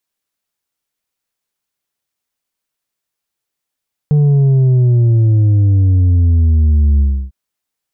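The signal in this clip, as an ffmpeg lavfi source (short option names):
-f lavfi -i "aevalsrc='0.398*clip((3.2-t)/0.31,0,1)*tanh(1.68*sin(2*PI*150*3.2/log(65/150)*(exp(log(65/150)*t/3.2)-1)))/tanh(1.68)':d=3.2:s=44100"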